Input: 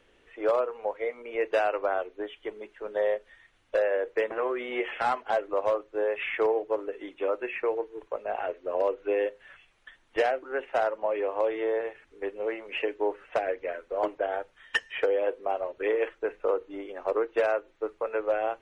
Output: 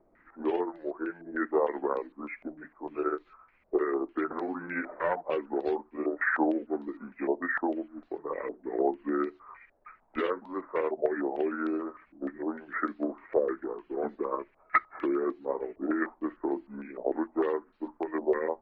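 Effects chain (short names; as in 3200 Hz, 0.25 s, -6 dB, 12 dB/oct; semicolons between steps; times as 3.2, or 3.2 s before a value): delay-line pitch shifter -6 st; stepped low-pass 6.6 Hz 640–3800 Hz; gain -3 dB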